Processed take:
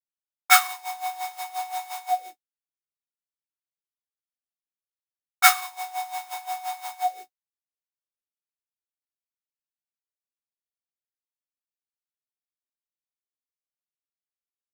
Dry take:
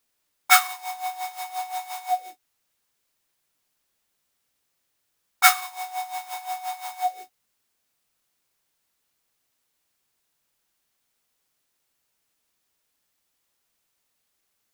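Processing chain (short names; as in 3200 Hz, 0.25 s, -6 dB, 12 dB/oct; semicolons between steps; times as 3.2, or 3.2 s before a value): expander -34 dBFS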